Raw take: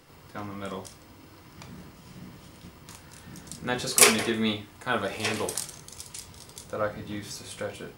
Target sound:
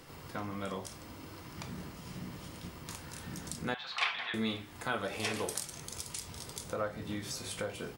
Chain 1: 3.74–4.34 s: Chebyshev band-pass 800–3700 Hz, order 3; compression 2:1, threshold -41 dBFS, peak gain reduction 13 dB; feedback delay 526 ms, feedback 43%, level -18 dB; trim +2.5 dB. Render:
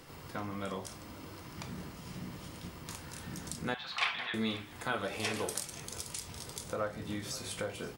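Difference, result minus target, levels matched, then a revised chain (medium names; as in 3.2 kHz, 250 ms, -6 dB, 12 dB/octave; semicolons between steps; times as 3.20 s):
echo-to-direct +6.5 dB
3.74–4.34 s: Chebyshev band-pass 800–3700 Hz, order 3; compression 2:1, threshold -41 dBFS, peak gain reduction 13 dB; feedback delay 526 ms, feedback 43%, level -24.5 dB; trim +2.5 dB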